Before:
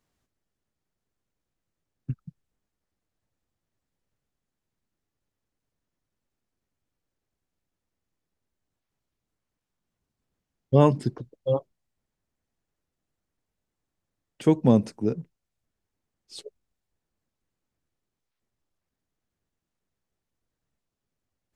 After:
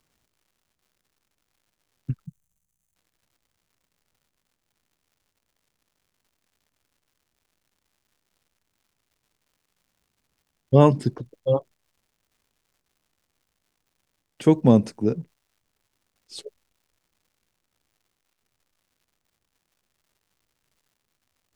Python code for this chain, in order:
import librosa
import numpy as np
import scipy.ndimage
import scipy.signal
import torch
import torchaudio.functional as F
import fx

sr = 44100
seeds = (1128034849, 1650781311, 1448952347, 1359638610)

y = fx.dmg_crackle(x, sr, seeds[0], per_s=210.0, level_db=-59.0)
y = fx.spec_box(y, sr, start_s=2.26, length_s=0.7, low_hz=210.0, high_hz=5900.0, gain_db=-14)
y = F.gain(torch.from_numpy(y), 3.0).numpy()